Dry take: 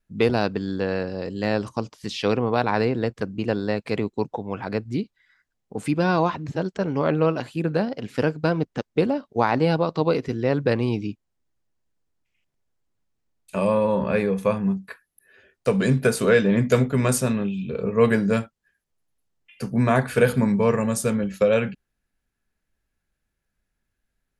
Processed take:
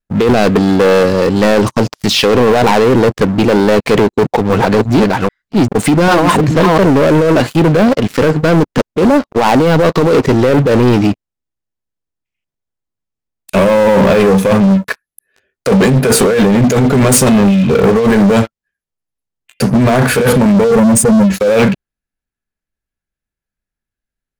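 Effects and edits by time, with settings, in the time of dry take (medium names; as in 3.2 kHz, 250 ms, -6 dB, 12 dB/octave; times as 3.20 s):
4.10–6.78 s: chunks repeated in reverse 396 ms, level -2 dB
20.64–21.30 s: spectral contrast enhancement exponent 2
whole clip: dynamic bell 440 Hz, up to +4 dB, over -28 dBFS, Q 0.71; compressor with a negative ratio -21 dBFS, ratio -1; waveshaping leveller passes 5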